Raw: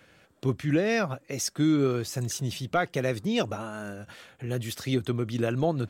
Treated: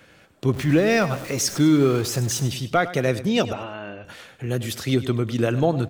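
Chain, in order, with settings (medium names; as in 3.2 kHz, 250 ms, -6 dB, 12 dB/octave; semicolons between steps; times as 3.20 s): 0.54–2.48 s: jump at every zero crossing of -36.5 dBFS; 3.53–4.05 s: cabinet simulation 140–3500 Hz, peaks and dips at 220 Hz -9 dB, 440 Hz -4 dB, 1.4 kHz -6 dB, 2.8 kHz +6 dB; feedback delay 102 ms, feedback 35%, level -14.5 dB; trim +5.5 dB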